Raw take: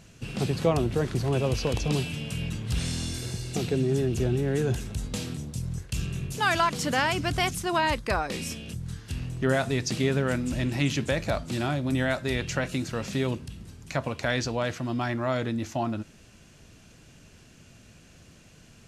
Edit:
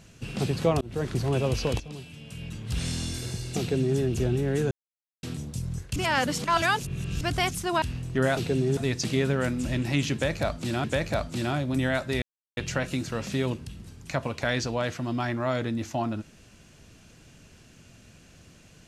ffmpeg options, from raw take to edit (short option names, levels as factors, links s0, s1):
-filter_complex "[0:a]asplit=12[s0][s1][s2][s3][s4][s5][s6][s7][s8][s9][s10][s11];[s0]atrim=end=0.81,asetpts=PTS-STARTPTS,afade=t=out:st=0.806:d=0.004:c=hsin[s12];[s1]atrim=start=0.81:end=1.8,asetpts=PTS-STARTPTS,afade=t=in:d=0.39:c=qsin,afade=t=out:st=0.986:d=0.004:c=hsin:silence=0.188365[s13];[s2]atrim=start=1.8:end=4.71,asetpts=PTS-STARTPTS,afade=t=in:d=1.08:c=qua:silence=0.188365,afade=t=out:st=2.906:d=0.004:c=hsin[s14];[s3]atrim=start=4.71:end=5.23,asetpts=PTS-STARTPTS,volume=0[s15];[s4]atrim=start=5.23:end=5.962,asetpts=PTS-STARTPTS,afade=t=in:d=0.004:c=hsin[s16];[s5]atrim=start=5.958:end=7.212,asetpts=PTS-STARTPTS,areverse[s17];[s6]atrim=start=7.208:end=7.822[s18];[s7]atrim=start=9.088:end=9.642[s19];[s8]atrim=start=3.588:end=3.992[s20];[s9]atrim=start=9.638:end=11.712[s21];[s10]atrim=start=10.998:end=12.38,asetpts=PTS-STARTPTS,afade=t=out:st=1.378:d=0.004:c=hsin,apad=pad_dur=0.35[s22];[s11]atrim=start=12.38,asetpts=PTS-STARTPTS,afade=t=in:d=0.004:c=hsin[s23];[s12][s13][s14][s15][s16]concat=n=5:v=0:a=1[s24];[s24][s17]acrossfade=d=0.004:c1=hsin:c2=hsin[s25];[s25][s18]acrossfade=d=0.004:c1=hsin:c2=hsin[s26];[s26][s19]acrossfade=d=0.004:c1=hsin:c2=hsin[s27];[s27][s20]acrossfade=d=0.004:c1=hsin:c2=hsin[s28];[s28][s21]acrossfade=d=0.004:c1=hsin:c2=hsin[s29];[s22][s23]concat=n=2:v=0:a=1[s30];[s29][s30]acrossfade=d=0.004:c1=hsin:c2=hsin"